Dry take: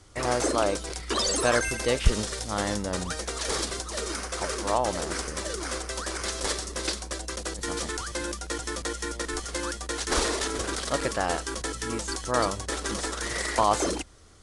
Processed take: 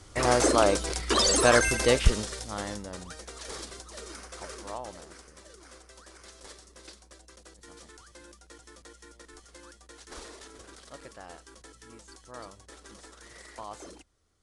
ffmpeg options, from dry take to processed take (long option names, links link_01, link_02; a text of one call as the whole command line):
ffmpeg -i in.wav -af "volume=3dB,afade=type=out:start_time=1.92:duration=0.27:silence=0.473151,afade=type=out:start_time=2.19:duration=0.79:silence=0.421697,afade=type=out:start_time=4.56:duration=0.62:silence=0.398107" out.wav